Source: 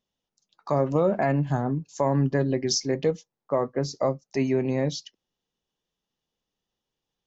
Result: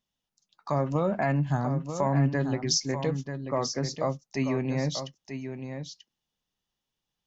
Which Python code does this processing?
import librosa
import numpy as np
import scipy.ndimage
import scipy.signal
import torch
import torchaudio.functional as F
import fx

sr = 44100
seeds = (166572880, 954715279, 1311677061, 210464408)

y = fx.peak_eq(x, sr, hz=430.0, db=-7.5, octaves=1.2)
y = y + 10.0 ** (-8.5 / 20.0) * np.pad(y, (int(938 * sr / 1000.0), 0))[:len(y)]